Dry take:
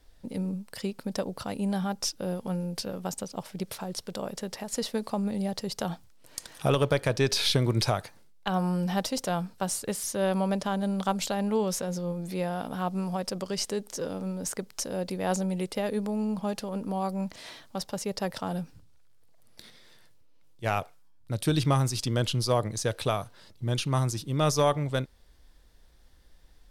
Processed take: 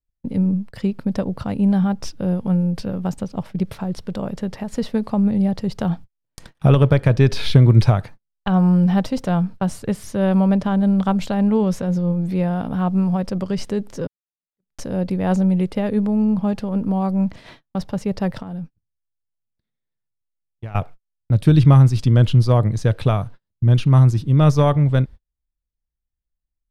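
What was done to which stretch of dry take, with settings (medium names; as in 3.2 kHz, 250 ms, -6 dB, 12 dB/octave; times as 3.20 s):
14.07–14.71 s: fade in exponential
18.42–20.75 s: compression 12:1, threshold -38 dBFS
whole clip: gate -44 dBFS, range -41 dB; tone controls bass +12 dB, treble -13 dB; trim +4.5 dB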